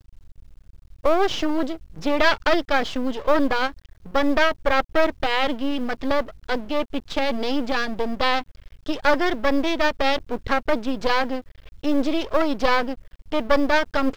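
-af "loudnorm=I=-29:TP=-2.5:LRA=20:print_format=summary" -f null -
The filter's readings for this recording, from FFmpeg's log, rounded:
Input Integrated:    -23.1 LUFS
Input True Peak:      -3.4 dBTP
Input LRA:             2.4 LU
Input Threshold:     -33.5 LUFS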